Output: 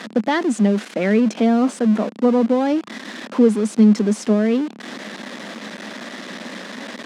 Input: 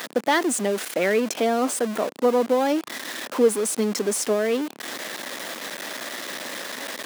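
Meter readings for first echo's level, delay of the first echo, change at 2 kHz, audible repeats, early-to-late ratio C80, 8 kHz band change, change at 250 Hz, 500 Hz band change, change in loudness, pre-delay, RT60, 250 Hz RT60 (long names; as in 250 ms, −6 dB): no echo audible, no echo audible, −0.5 dB, no echo audible, no reverb audible, −8.5 dB, +11.0 dB, +1.0 dB, +6.5 dB, no reverb audible, no reverb audible, no reverb audible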